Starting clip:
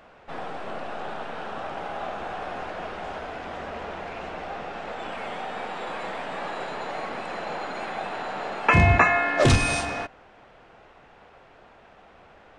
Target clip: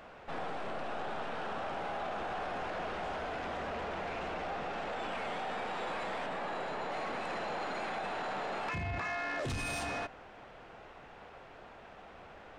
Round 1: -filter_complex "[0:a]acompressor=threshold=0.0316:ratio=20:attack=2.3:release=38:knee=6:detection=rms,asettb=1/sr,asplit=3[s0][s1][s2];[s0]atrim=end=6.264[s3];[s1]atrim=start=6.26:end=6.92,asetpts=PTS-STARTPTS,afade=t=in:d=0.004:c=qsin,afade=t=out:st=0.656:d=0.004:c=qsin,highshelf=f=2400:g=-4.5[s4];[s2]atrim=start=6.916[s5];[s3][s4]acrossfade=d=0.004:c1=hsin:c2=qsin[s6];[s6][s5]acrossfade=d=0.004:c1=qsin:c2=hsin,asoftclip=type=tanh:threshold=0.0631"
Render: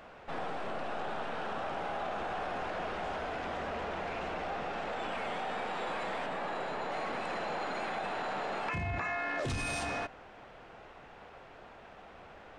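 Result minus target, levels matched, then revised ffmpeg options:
saturation: distortion -10 dB
-filter_complex "[0:a]acompressor=threshold=0.0316:ratio=20:attack=2.3:release=38:knee=6:detection=rms,asettb=1/sr,asplit=3[s0][s1][s2];[s0]atrim=end=6.264[s3];[s1]atrim=start=6.26:end=6.92,asetpts=PTS-STARTPTS,afade=t=in:d=0.004:c=qsin,afade=t=out:st=0.656:d=0.004:c=qsin,highshelf=f=2400:g=-4.5[s4];[s2]atrim=start=6.916[s5];[s3][s4]acrossfade=d=0.004:c1=hsin:c2=qsin[s6];[s6][s5]acrossfade=d=0.004:c1=qsin:c2=hsin,asoftclip=type=tanh:threshold=0.0299"

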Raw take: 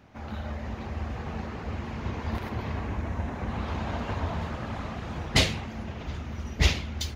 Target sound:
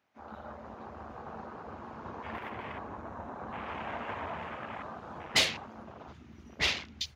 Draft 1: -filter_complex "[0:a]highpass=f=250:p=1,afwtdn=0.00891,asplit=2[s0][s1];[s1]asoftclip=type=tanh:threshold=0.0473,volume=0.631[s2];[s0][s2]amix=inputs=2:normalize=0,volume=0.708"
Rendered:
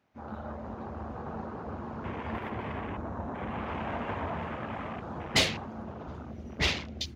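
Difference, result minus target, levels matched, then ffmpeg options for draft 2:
250 Hz band +7.0 dB
-filter_complex "[0:a]highpass=f=840:p=1,afwtdn=0.00891,asplit=2[s0][s1];[s1]asoftclip=type=tanh:threshold=0.0473,volume=0.631[s2];[s0][s2]amix=inputs=2:normalize=0,volume=0.708"

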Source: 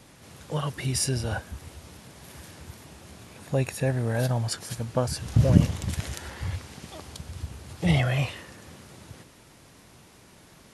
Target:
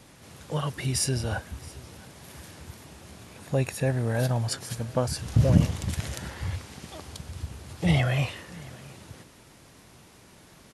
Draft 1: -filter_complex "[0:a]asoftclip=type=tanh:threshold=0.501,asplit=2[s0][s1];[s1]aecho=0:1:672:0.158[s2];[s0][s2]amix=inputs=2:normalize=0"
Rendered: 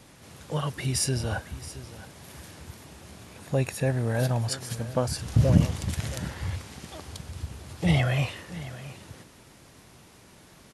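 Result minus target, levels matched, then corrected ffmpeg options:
echo-to-direct +6.5 dB
-filter_complex "[0:a]asoftclip=type=tanh:threshold=0.501,asplit=2[s0][s1];[s1]aecho=0:1:672:0.075[s2];[s0][s2]amix=inputs=2:normalize=0"

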